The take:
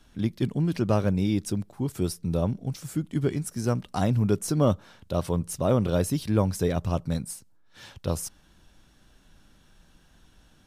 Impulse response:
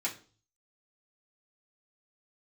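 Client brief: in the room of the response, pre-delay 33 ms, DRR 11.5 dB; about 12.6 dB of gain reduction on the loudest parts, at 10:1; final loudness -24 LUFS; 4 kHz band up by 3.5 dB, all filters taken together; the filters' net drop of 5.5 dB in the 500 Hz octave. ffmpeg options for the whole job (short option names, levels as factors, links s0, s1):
-filter_complex "[0:a]equalizer=f=500:t=o:g=-7,equalizer=f=4000:t=o:g=4.5,acompressor=threshold=0.0251:ratio=10,asplit=2[s0][s1];[1:a]atrim=start_sample=2205,adelay=33[s2];[s1][s2]afir=irnorm=-1:irlink=0,volume=0.158[s3];[s0][s3]amix=inputs=2:normalize=0,volume=4.73"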